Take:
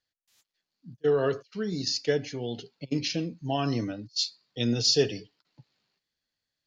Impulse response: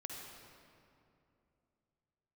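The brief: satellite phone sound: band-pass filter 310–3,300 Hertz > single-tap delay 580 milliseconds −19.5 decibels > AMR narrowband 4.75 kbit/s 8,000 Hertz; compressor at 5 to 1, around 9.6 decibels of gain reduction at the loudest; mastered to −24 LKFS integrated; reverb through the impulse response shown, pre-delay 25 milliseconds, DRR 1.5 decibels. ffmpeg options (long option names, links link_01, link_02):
-filter_complex "[0:a]acompressor=threshold=-30dB:ratio=5,asplit=2[link_01][link_02];[1:a]atrim=start_sample=2205,adelay=25[link_03];[link_02][link_03]afir=irnorm=-1:irlink=0,volume=0.5dB[link_04];[link_01][link_04]amix=inputs=2:normalize=0,highpass=310,lowpass=3300,aecho=1:1:580:0.106,volume=14dB" -ar 8000 -c:a libopencore_amrnb -b:a 4750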